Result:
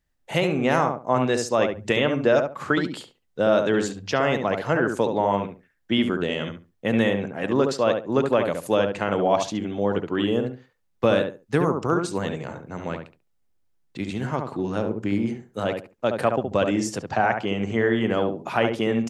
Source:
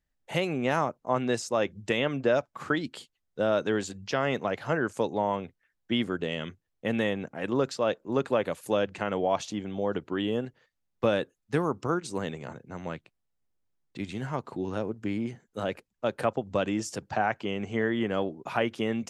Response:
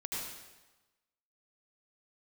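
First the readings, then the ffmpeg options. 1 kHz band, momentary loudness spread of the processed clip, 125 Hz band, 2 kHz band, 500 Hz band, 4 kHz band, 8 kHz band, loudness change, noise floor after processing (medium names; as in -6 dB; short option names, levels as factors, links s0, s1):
+6.0 dB, 9 LU, +6.5 dB, +5.5 dB, +6.0 dB, +5.5 dB, +5.0 dB, +6.0 dB, -69 dBFS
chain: -filter_complex "[0:a]asplit=2[s0][s1];[s1]adelay=70,lowpass=f=1500:p=1,volume=0.596,asplit=2[s2][s3];[s3]adelay=70,lowpass=f=1500:p=1,volume=0.22,asplit=2[s4][s5];[s5]adelay=70,lowpass=f=1500:p=1,volume=0.22[s6];[s0][s2][s4][s6]amix=inputs=4:normalize=0,volume=1.78"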